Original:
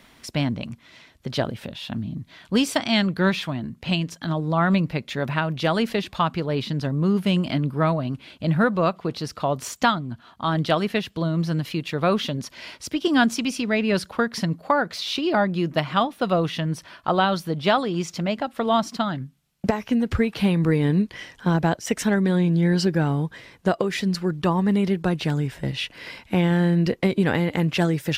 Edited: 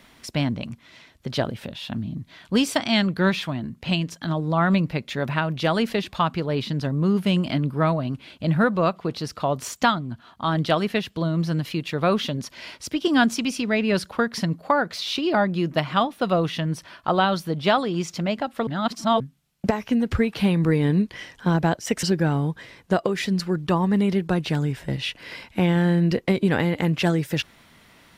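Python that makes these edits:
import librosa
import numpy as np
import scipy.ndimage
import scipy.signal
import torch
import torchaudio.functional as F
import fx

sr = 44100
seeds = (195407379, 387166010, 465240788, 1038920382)

y = fx.edit(x, sr, fx.reverse_span(start_s=18.67, length_s=0.53),
    fx.cut(start_s=22.03, length_s=0.75), tone=tone)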